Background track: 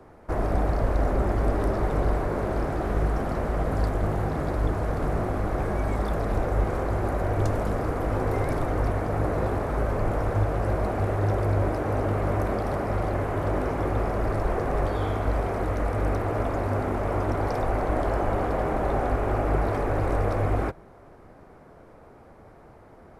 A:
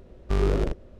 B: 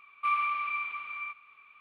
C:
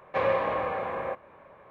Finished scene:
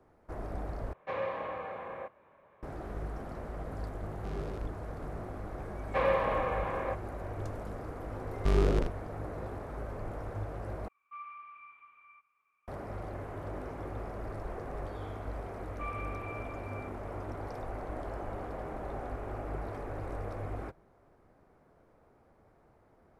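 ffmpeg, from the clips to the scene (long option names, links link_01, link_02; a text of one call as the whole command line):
ffmpeg -i bed.wav -i cue0.wav -i cue1.wav -i cue2.wav -filter_complex "[3:a]asplit=2[link_01][link_02];[1:a]asplit=2[link_03][link_04];[2:a]asplit=2[link_05][link_06];[0:a]volume=-14dB[link_07];[link_05]lowpass=1700[link_08];[link_06]lowpass=3500[link_09];[link_07]asplit=3[link_10][link_11][link_12];[link_10]atrim=end=0.934[link_13];[link_01]atrim=end=1.7,asetpts=PTS-STARTPTS,volume=-9.5dB[link_14];[link_11]atrim=start=2.626:end=10.884[link_15];[link_08]atrim=end=1.8,asetpts=PTS-STARTPTS,volume=-16dB[link_16];[link_12]atrim=start=12.676[link_17];[link_03]atrim=end=0.99,asetpts=PTS-STARTPTS,volume=-16.5dB,afade=type=in:duration=0.004:curve=hsin,afade=type=out:start_time=0.986:duration=0.004:curve=hsin,adelay=3940[link_18];[link_02]atrim=end=1.7,asetpts=PTS-STARTPTS,volume=-2.5dB,afade=type=in:duration=0.004:curve=hsin,afade=type=out:start_time=1.696:duration=0.004:curve=hsin,adelay=5800[link_19];[link_04]atrim=end=0.99,asetpts=PTS-STARTPTS,volume=-3dB,afade=type=in:duration=0.004:curve=hsin,afade=type=out:start_time=0.986:duration=0.004:curve=hsin,adelay=8150[link_20];[link_09]atrim=end=1.8,asetpts=PTS-STARTPTS,volume=-13dB,afade=type=in:duration=0.004:curve=hsin,afade=type=out:start_time=1.796:duration=0.004:curve=hsin,adelay=686196S[link_21];[link_13][link_14]acrossfade=duration=0.004:curve1=hsin:curve2=hsin[link_22];[link_22][link_15]acrossfade=duration=0.004:curve1=hsin:curve2=hsin[link_23];[link_23][link_16]acrossfade=duration=0.004:curve1=hsin:curve2=hsin[link_24];[link_24][link_17]acrossfade=duration=0.004:curve1=hsin:curve2=hsin[link_25];[link_25][link_18][link_19][link_20][link_21]amix=inputs=5:normalize=0" out.wav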